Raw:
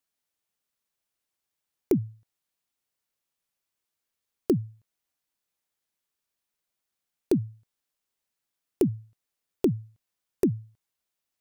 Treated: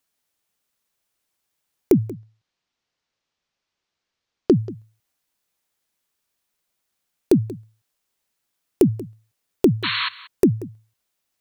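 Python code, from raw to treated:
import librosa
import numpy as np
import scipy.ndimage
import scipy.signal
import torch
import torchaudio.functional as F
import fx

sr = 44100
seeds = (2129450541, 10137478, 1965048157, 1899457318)

y = fx.lowpass(x, sr, hz=5800.0, slope=24, at=(2.07, 4.54), fade=0.02)
y = fx.spec_paint(y, sr, seeds[0], shape='noise', start_s=9.83, length_s=0.26, low_hz=940.0, high_hz=4400.0, level_db=-31.0)
y = y + 10.0 ** (-18.5 / 20.0) * np.pad(y, (int(184 * sr / 1000.0), 0))[:len(y)]
y = F.gain(torch.from_numpy(y), 7.5).numpy()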